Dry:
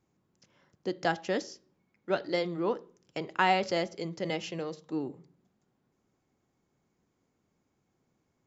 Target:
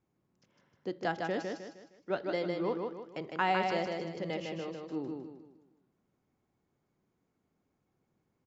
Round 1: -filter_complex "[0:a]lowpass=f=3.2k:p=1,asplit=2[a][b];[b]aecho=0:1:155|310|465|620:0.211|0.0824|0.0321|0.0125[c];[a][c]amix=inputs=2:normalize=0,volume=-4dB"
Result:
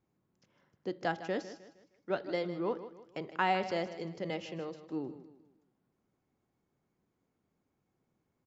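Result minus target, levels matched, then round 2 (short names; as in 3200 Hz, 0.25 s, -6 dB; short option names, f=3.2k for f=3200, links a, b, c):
echo-to-direct -9.5 dB
-filter_complex "[0:a]lowpass=f=3.2k:p=1,asplit=2[a][b];[b]aecho=0:1:155|310|465|620|775:0.631|0.246|0.096|0.0374|0.0146[c];[a][c]amix=inputs=2:normalize=0,volume=-4dB"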